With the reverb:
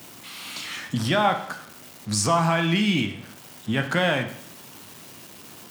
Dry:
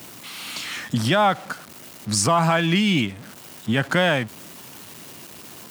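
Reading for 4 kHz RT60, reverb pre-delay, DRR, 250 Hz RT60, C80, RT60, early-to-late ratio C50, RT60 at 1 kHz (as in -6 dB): 0.65 s, 14 ms, 6.0 dB, 0.65 s, 13.0 dB, 0.65 s, 10.5 dB, 0.70 s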